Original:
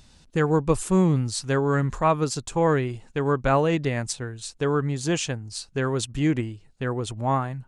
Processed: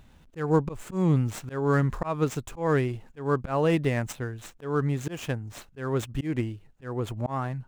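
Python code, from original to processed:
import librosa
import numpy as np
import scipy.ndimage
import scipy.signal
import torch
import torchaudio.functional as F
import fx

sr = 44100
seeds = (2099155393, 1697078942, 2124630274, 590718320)

y = scipy.ndimage.median_filter(x, 9, mode='constant')
y = fx.auto_swell(y, sr, attack_ms=204.0)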